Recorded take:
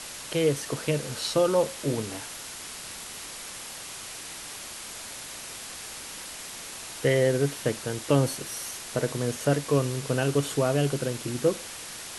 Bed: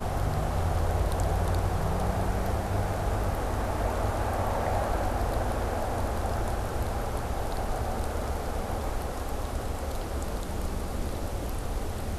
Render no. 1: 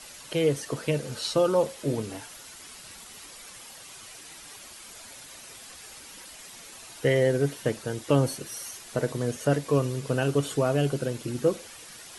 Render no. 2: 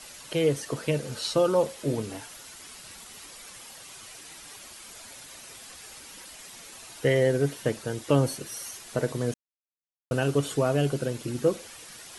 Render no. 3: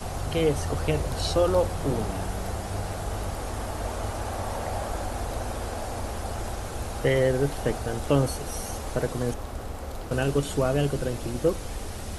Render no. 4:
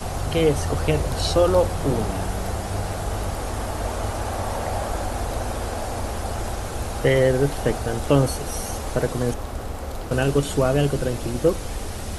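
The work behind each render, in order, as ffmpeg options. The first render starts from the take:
ffmpeg -i in.wav -af "afftdn=noise_reduction=9:noise_floor=-40" out.wav
ffmpeg -i in.wav -filter_complex "[0:a]asplit=3[link_01][link_02][link_03];[link_01]atrim=end=9.34,asetpts=PTS-STARTPTS,afade=type=out:start_time=9.336:duration=0.004:curve=hsin[link_04];[link_02]atrim=start=9.34:end=10.11,asetpts=PTS-STARTPTS,volume=0[link_05];[link_03]atrim=start=10.11,asetpts=PTS-STARTPTS,afade=type=in:duration=0.004:curve=hsin[link_06];[link_04][link_05][link_06]concat=n=3:v=0:a=1" out.wav
ffmpeg -i in.wav -i bed.wav -filter_complex "[1:a]volume=-3dB[link_01];[0:a][link_01]amix=inputs=2:normalize=0" out.wav
ffmpeg -i in.wav -af "volume=4.5dB" out.wav

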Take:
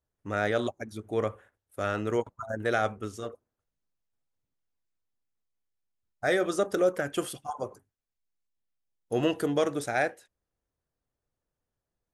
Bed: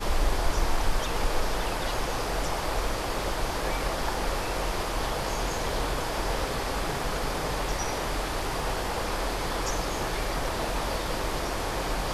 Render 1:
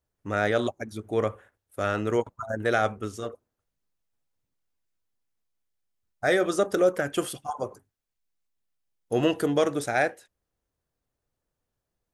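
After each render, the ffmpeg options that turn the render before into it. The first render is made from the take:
ffmpeg -i in.wav -af "volume=3dB" out.wav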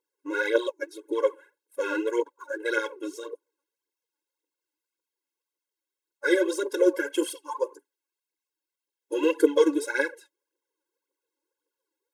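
ffmpeg -i in.wav -af "aphaser=in_gain=1:out_gain=1:delay=3.7:decay=0.68:speed=1.8:type=triangular,afftfilt=real='re*eq(mod(floor(b*sr/1024/280),2),1)':imag='im*eq(mod(floor(b*sr/1024/280),2),1)':win_size=1024:overlap=0.75" out.wav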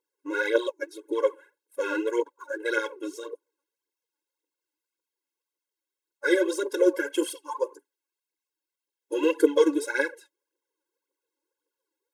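ffmpeg -i in.wav -af anull out.wav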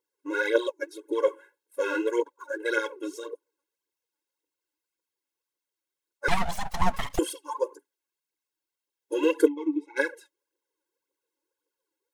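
ffmpeg -i in.wav -filter_complex "[0:a]asettb=1/sr,asplit=3[link_01][link_02][link_03];[link_01]atrim=end=1.264[link_04];[link_02]atrim=start=1.26:end=2.08,asetpts=PTS-STARTPTS,afade=type=in:duration=0.004:curve=qsin,afade=type=out:start_time=0.816:duration=0.004:curve=qsin,asplit=2[link_05][link_06];[link_06]adelay=18,volume=-8dB[link_07];[link_05][link_07]amix=inputs=2:normalize=0,atrim=end_sample=36162[link_08];[link_03]atrim=start=2.076[link_09];[link_04][link_08]acrossfade=duration=0.004:curve1=hsin:curve2=qsin[link_10];[link_10][link_09]acrossfade=duration=0.004:curve1=qsin:curve2=hsin,asettb=1/sr,asplit=3[link_11][link_12][link_13];[link_11]atrim=end=6.284[link_14];[link_12]atrim=start=6.28:end=7.19,asetpts=PTS-STARTPTS,afade=type=in:duration=0.004:curve=qsin,afade=type=out:start_time=0.906:duration=0.004:curve=qsin,aeval=exprs='abs(val(0))':channel_layout=same[link_15];[link_13]atrim=start=7.186[link_16];[link_14][link_15]acrossfade=duration=0.004:curve1=hsin:curve2=qsin[link_17];[link_17][link_16]acrossfade=duration=0.004:curve1=qsin:curve2=hsin,asplit=3[link_18][link_19][link_20];[link_18]afade=type=out:start_time=9.47:duration=0.02[link_21];[link_19]asplit=3[link_22][link_23][link_24];[link_22]bandpass=frequency=300:width_type=q:width=8,volume=0dB[link_25];[link_23]bandpass=frequency=870:width_type=q:width=8,volume=-6dB[link_26];[link_24]bandpass=frequency=2240:width_type=q:width=8,volume=-9dB[link_27];[link_25][link_26][link_27]amix=inputs=3:normalize=0,afade=type=in:start_time=9.47:duration=0.02,afade=type=out:start_time=9.96:duration=0.02[link_28];[link_20]afade=type=in:start_time=9.96:duration=0.02[link_29];[link_21][link_28][link_29]amix=inputs=3:normalize=0" out.wav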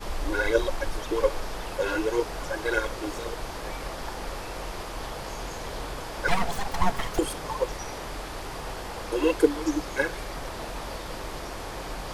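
ffmpeg -i in.wav -i bed.wav -filter_complex "[1:a]volume=-6dB[link_01];[0:a][link_01]amix=inputs=2:normalize=0" out.wav

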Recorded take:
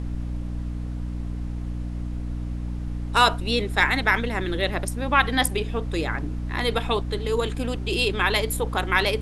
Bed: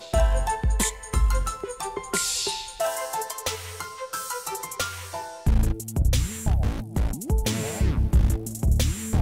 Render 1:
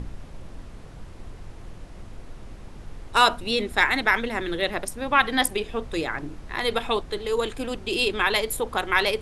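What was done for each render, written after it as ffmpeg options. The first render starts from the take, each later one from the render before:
ffmpeg -i in.wav -af "bandreject=frequency=60:width_type=h:width=6,bandreject=frequency=120:width_type=h:width=6,bandreject=frequency=180:width_type=h:width=6,bandreject=frequency=240:width_type=h:width=6,bandreject=frequency=300:width_type=h:width=6" out.wav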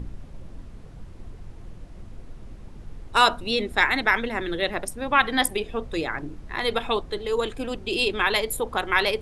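ffmpeg -i in.wav -af "afftdn=noise_reduction=6:noise_floor=-42" out.wav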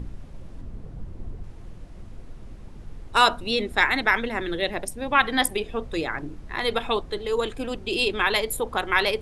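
ffmpeg -i in.wav -filter_complex "[0:a]asettb=1/sr,asplit=3[link_01][link_02][link_03];[link_01]atrim=end=0.614[link_04];[link_02]atrim=start=0.61:end=1.44,asetpts=PTS-STARTPTS,afade=type=in:duration=0.004:curve=qsin,afade=type=out:start_time=0.826:duration=0.004:curve=qsin,tiltshelf=frequency=930:gain=5[link_05];[link_03]atrim=start=1.436[link_06];[link_04][link_05]acrossfade=duration=0.004:curve1=hsin:curve2=qsin[link_07];[link_07][link_06]acrossfade=duration=0.004:curve1=qsin:curve2=hsin,asettb=1/sr,asplit=3[link_08][link_09][link_10];[link_08]atrim=end=4.594[link_11];[link_09]atrim=start=4.59:end=5.15,asetpts=PTS-STARTPTS,afade=type=in:duration=0.004:curve=qsin,afade=type=out:start_time=0.556:duration=0.004:curve=qsin,equalizer=frequency=1300:width=2.3:gain=-6.5[link_12];[link_10]atrim=start=5.146[link_13];[link_11][link_12]acrossfade=duration=0.004:curve1=hsin:curve2=qsin[link_14];[link_14][link_13]acrossfade=duration=0.004:curve1=qsin:curve2=hsin" out.wav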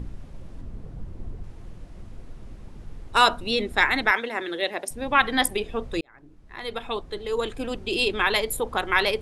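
ffmpeg -i in.wav -filter_complex "[0:a]asettb=1/sr,asplit=3[link_01][link_02][link_03];[link_01]atrim=end=4.114[link_04];[link_02]atrim=start=4.11:end=4.91,asetpts=PTS-STARTPTS,afade=type=in:duration=0.004:curve=qsin,afade=type=out:start_time=0.796:duration=0.004:curve=qsin,highpass=330[link_05];[link_03]atrim=start=4.906[link_06];[link_04][link_05]acrossfade=duration=0.004:curve1=hsin:curve2=qsin[link_07];[link_07][link_06]acrossfade=duration=0.004:curve1=qsin:curve2=hsin,asplit=2[link_08][link_09];[link_08]atrim=end=6.01,asetpts=PTS-STARTPTS,afade=type=out:start_time=6.006:duration=0.004:curve=hsin[link_10];[link_09]atrim=start=6.01,asetpts=PTS-STARTPTS,afade=type=in:duration=1.65[link_11];[link_10][link_11]concat=n=2:v=0:a=1" out.wav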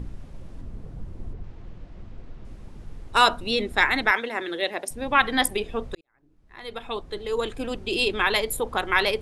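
ffmpeg -i in.wav -filter_complex "[0:a]asettb=1/sr,asplit=3[link_01][link_02][link_03];[link_01]atrim=end=1.334[link_04];[link_02]atrim=start=1.33:end=2.45,asetpts=PTS-STARTPTS,afade=type=in:duration=0.004:curve=qsin,afade=type=out:start_time=1.116:duration=0.004:curve=qsin,lowpass=4500[link_05];[link_03]atrim=start=2.446[link_06];[link_04][link_05]acrossfade=duration=0.004:curve1=hsin:curve2=qsin[link_07];[link_07][link_06]acrossfade=duration=0.004:curve1=qsin:curve2=hsin,asplit=2[link_08][link_09];[link_08]atrim=end=5.95,asetpts=PTS-STARTPTS,afade=type=out:start_time=5.946:duration=0.004:curve=hsin[link_10];[link_09]atrim=start=5.95,asetpts=PTS-STARTPTS,afade=type=in:duration=1.18[link_11];[link_10][link_11]concat=n=2:v=0:a=1" out.wav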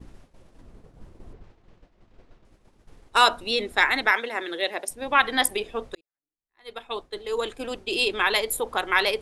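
ffmpeg -i in.wav -af "agate=range=-33dB:threshold=-31dB:ratio=3:detection=peak,bass=frequency=250:gain=-10,treble=frequency=4000:gain=2" out.wav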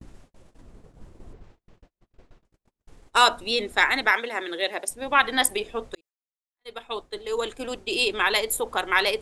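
ffmpeg -i in.wav -af "agate=range=-31dB:threshold=-52dB:ratio=16:detection=peak,equalizer=frequency=7500:width_type=o:width=0.58:gain=4.5" out.wav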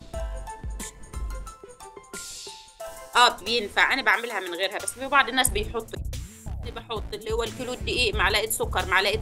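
ffmpeg -i in.wav -i bed.wav -filter_complex "[1:a]volume=-12dB[link_01];[0:a][link_01]amix=inputs=2:normalize=0" out.wav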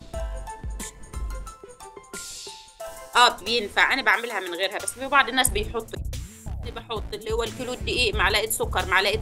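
ffmpeg -i in.wav -af "volume=1dB" out.wav

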